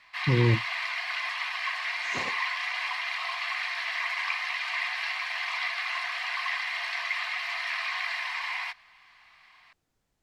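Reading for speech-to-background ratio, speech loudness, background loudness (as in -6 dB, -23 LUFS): 4.0 dB, -26.0 LUFS, -30.0 LUFS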